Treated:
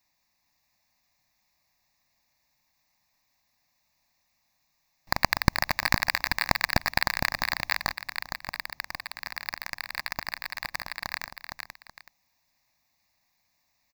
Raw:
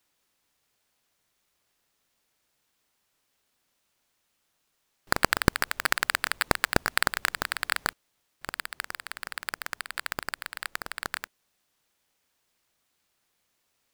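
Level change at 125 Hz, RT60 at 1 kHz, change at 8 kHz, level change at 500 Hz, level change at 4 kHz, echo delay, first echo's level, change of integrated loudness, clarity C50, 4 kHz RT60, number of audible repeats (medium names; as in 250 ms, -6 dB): +3.0 dB, no reverb, -4.0 dB, -3.0 dB, +2.0 dB, 461 ms, -5.5 dB, +0.5 dB, no reverb, no reverb, 2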